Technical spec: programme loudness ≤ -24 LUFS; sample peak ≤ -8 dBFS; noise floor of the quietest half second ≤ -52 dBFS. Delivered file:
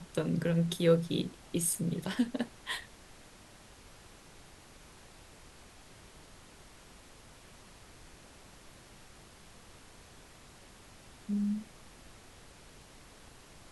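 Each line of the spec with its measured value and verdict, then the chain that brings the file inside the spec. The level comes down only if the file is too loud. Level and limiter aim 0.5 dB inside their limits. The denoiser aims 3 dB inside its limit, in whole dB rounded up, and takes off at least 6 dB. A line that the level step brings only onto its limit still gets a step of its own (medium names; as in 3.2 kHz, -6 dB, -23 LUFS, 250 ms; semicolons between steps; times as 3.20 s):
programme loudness -32.5 LUFS: pass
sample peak -13.0 dBFS: pass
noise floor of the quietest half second -55 dBFS: pass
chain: none needed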